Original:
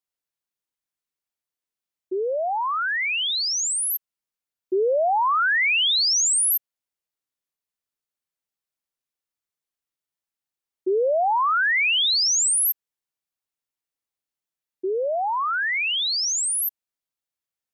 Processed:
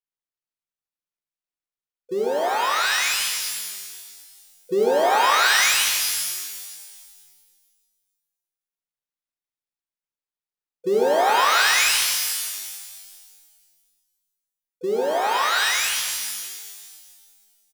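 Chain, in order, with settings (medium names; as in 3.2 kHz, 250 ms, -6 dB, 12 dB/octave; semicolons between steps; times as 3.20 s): dead-time distortion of 0.11 ms; harmony voices -12 st -16 dB, +5 st -16 dB; pitch-shifted reverb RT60 1.7 s, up +12 st, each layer -2 dB, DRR 3.5 dB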